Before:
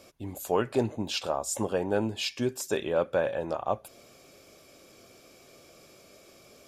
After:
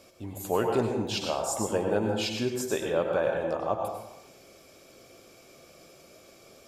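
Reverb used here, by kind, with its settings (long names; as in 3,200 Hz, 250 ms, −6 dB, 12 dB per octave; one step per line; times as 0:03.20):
dense smooth reverb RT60 0.88 s, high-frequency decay 0.55×, pre-delay 85 ms, DRR 2 dB
level −1 dB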